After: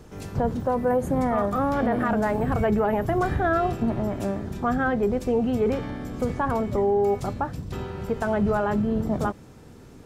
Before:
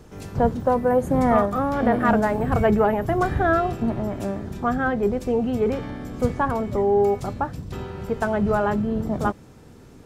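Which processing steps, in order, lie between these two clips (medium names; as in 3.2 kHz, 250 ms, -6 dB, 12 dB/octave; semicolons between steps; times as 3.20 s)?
peak limiter -15 dBFS, peak gain reduction 9 dB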